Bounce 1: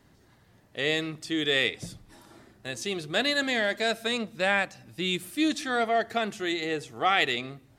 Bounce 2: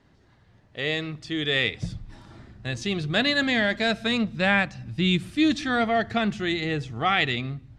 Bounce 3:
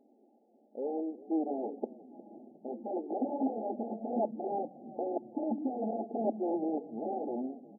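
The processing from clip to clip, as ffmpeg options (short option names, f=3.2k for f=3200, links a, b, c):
-af "lowpass=4.9k,asubboost=boost=6.5:cutoff=170,dynaudnorm=f=690:g=5:m=4dB"
-filter_complex "[0:a]aeval=exprs='(mod(11.2*val(0)+1,2)-1)/11.2':c=same,afftfilt=real='re*between(b*sr/4096,210,870)':imag='im*between(b*sr/4096,210,870)':win_size=4096:overlap=0.75,asplit=4[a][b][c][d];[b]adelay=358,afreqshift=-33,volume=-19dB[e];[c]adelay=716,afreqshift=-66,volume=-26.5dB[f];[d]adelay=1074,afreqshift=-99,volume=-34.1dB[g];[a][e][f][g]amix=inputs=4:normalize=0"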